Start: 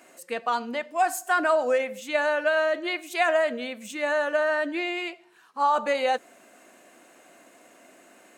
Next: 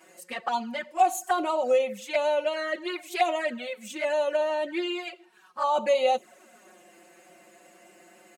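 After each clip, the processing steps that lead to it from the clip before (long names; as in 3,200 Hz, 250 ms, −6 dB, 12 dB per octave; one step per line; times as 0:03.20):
comb filter 5.4 ms, depth 80%
flanger swept by the level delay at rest 6.5 ms, full sweep at −19.5 dBFS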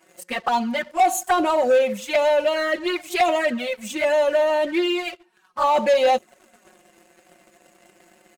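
low-shelf EQ 130 Hz +11 dB
leveller curve on the samples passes 2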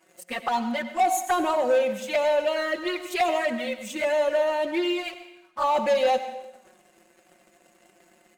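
dense smooth reverb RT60 0.91 s, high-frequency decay 0.9×, pre-delay 80 ms, DRR 10.5 dB
level −4.5 dB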